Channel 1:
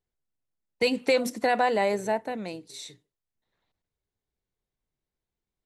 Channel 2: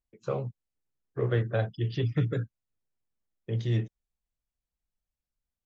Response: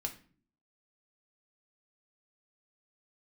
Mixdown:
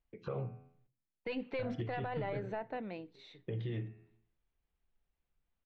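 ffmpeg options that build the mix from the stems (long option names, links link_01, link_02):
-filter_complex "[0:a]aeval=exprs='0.335*(cos(1*acos(clip(val(0)/0.335,-1,1)))-cos(1*PI/2))+0.0299*(cos(4*acos(clip(val(0)/0.335,-1,1)))-cos(4*PI/2))':channel_layout=same,adelay=450,volume=-8dB,asplit=2[link_01][link_02];[link_02]volume=-20.5dB[link_03];[1:a]bandreject=frequency=83.81:width_type=h:width=4,bandreject=frequency=167.62:width_type=h:width=4,bandreject=frequency=251.43:width_type=h:width=4,bandreject=frequency=335.24:width_type=h:width=4,bandreject=frequency=419.05:width_type=h:width=4,bandreject=frequency=502.86:width_type=h:width=4,bandreject=frequency=586.67:width_type=h:width=4,bandreject=frequency=670.48:width_type=h:width=4,bandreject=frequency=754.29:width_type=h:width=4,bandreject=frequency=838.1:width_type=h:width=4,bandreject=frequency=921.91:width_type=h:width=4,bandreject=frequency=1005.72:width_type=h:width=4,bandreject=frequency=1089.53:width_type=h:width=4,bandreject=frequency=1173.34:width_type=h:width=4,bandreject=frequency=1257.15:width_type=h:width=4,bandreject=frequency=1340.96:width_type=h:width=4,bandreject=frequency=1424.77:width_type=h:width=4,bandreject=frequency=1508.58:width_type=h:width=4,bandreject=frequency=1592.39:width_type=h:width=4,bandreject=frequency=1676.2:width_type=h:width=4,bandreject=frequency=1760.01:width_type=h:width=4,bandreject=frequency=1843.82:width_type=h:width=4,bandreject=frequency=1927.63:width_type=h:width=4,bandreject=frequency=2011.44:width_type=h:width=4,bandreject=frequency=2095.25:width_type=h:width=4,bandreject=frequency=2179.06:width_type=h:width=4,bandreject=frequency=2262.87:width_type=h:width=4,bandreject=frequency=2346.68:width_type=h:width=4,bandreject=frequency=2430.49:width_type=h:width=4,bandreject=frequency=2514.3:width_type=h:width=4,bandreject=frequency=2598.11:width_type=h:width=4,bandreject=frequency=2681.92:width_type=h:width=4,bandreject=frequency=2765.73:width_type=h:width=4,acompressor=threshold=-41dB:ratio=3,volume=2.5dB,asplit=3[link_04][link_05][link_06];[link_04]atrim=end=0.87,asetpts=PTS-STARTPTS,afade=type=out:start_time=0.866:duration=0.004:curve=hsin[link_07];[link_05]atrim=start=0.87:end=1.59,asetpts=PTS-STARTPTS,volume=0[link_08];[link_06]atrim=start=1.59,asetpts=PTS-STARTPTS,afade=type=in:duration=0.004:curve=hsin[link_09];[link_07][link_08][link_09]concat=n=3:v=0:a=1,asplit=2[link_10][link_11];[link_11]volume=-6dB[link_12];[2:a]atrim=start_sample=2205[link_13];[link_03][link_12]amix=inputs=2:normalize=0[link_14];[link_14][link_13]afir=irnorm=-1:irlink=0[link_15];[link_01][link_10][link_15]amix=inputs=3:normalize=0,lowpass=frequency=3200:width=0.5412,lowpass=frequency=3200:width=1.3066,alimiter=level_in=5dB:limit=-24dB:level=0:latency=1:release=85,volume=-5dB"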